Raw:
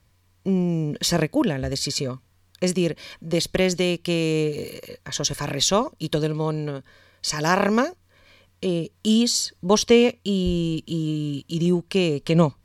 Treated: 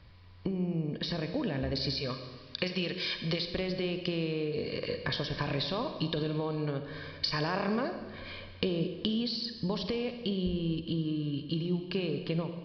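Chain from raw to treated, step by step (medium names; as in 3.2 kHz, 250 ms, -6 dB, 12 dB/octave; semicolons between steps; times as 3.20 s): fade out at the end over 3.52 s; 1.92–3.53 s: tilt shelf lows -7.5 dB, about 1.4 kHz; peak limiter -17 dBFS, peak gain reduction 11.5 dB; compression 10:1, threshold -38 dBFS, peak gain reduction 17 dB; resampled via 11.025 kHz; on a send at -7.5 dB: reverberation RT60 1.5 s, pre-delay 36 ms; on the sum: gain riding within 4 dB 2 s; trim +8.5 dB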